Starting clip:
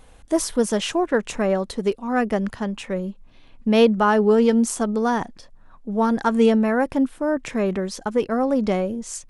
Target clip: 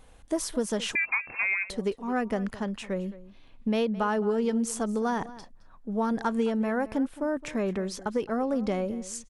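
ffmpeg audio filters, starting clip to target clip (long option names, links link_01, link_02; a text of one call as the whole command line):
ffmpeg -i in.wav -filter_complex "[0:a]acompressor=threshold=-18dB:ratio=6,asplit=2[link_01][link_02];[link_02]adelay=215.7,volume=-17dB,highshelf=frequency=4000:gain=-4.85[link_03];[link_01][link_03]amix=inputs=2:normalize=0,asettb=1/sr,asplit=3[link_04][link_05][link_06];[link_04]atrim=end=0.954[link_07];[link_05]atrim=start=0.95:end=1.7,asetpts=PTS-STARTPTS,afade=type=in:duration=0.004:curve=qsin,afade=type=out:start_time=0.746:duration=0.004:curve=qsin,lowpass=frequency=2300:width_type=q:width=0.5098,lowpass=frequency=2300:width_type=q:width=0.6013,lowpass=frequency=2300:width_type=q:width=0.9,lowpass=frequency=2300:width_type=q:width=2.563,afreqshift=-2700[link_08];[link_06]atrim=start=1.696[link_09];[link_07][link_08]acrossfade=duration=0.004:curve1=hsin:curve2=qsin[link_10];[link_10][link_09]acrossfade=duration=0.004:curve1=qsin:curve2=hsin,volume=-5dB" out.wav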